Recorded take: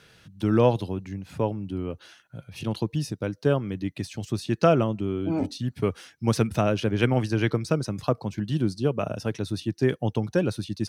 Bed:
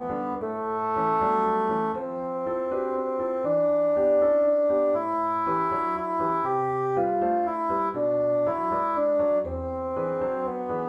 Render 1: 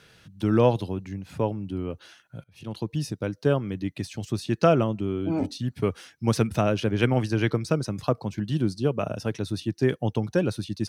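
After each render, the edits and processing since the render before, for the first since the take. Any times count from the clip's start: 2.44–3.04 s: fade in, from -22 dB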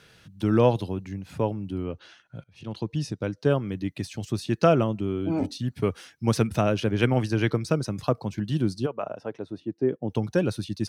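1.83–3.49 s: low-pass 5.1 kHz -> 8.9 kHz; 8.85–10.09 s: band-pass filter 1.1 kHz -> 280 Hz, Q 1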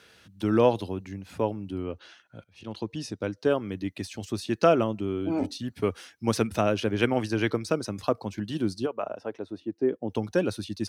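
high-pass 72 Hz; peaking EQ 140 Hz -13.5 dB 0.54 oct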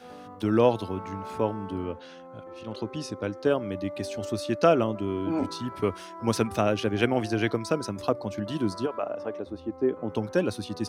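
add bed -15.5 dB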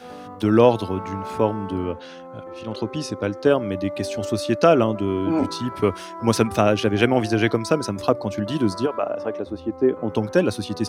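trim +6.5 dB; peak limiter -3 dBFS, peak gain reduction 2.5 dB

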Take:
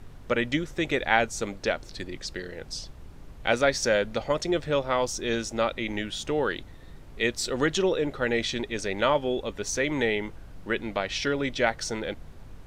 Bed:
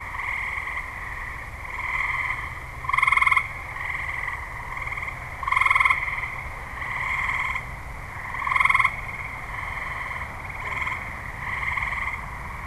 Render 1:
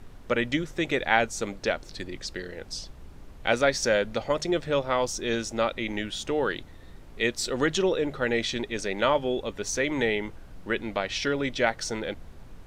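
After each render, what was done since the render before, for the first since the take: de-hum 50 Hz, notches 3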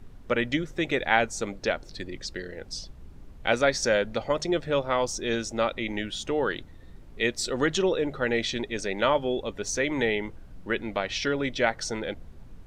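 noise reduction 6 dB, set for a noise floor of -47 dBFS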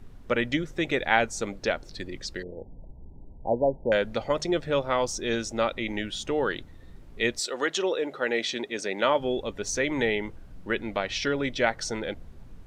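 2.43–3.92 s: brick-wall FIR low-pass 1 kHz; 7.38–9.19 s: high-pass 510 Hz -> 170 Hz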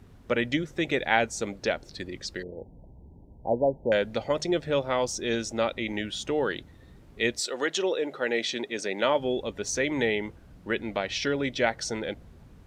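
high-pass 49 Hz; dynamic bell 1.2 kHz, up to -4 dB, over -42 dBFS, Q 2.1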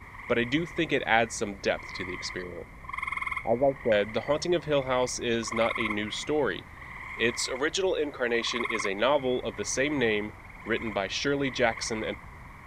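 add bed -13.5 dB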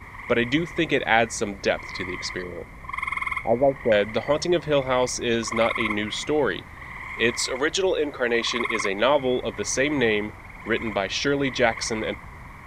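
trim +4.5 dB; peak limiter -3 dBFS, peak gain reduction 1 dB

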